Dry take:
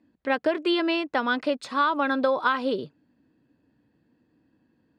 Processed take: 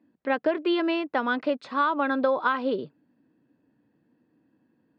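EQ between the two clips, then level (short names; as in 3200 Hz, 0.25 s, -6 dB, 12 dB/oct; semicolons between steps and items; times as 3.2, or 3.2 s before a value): BPF 130–5200 Hz; high shelf 3100 Hz -8.5 dB; 0.0 dB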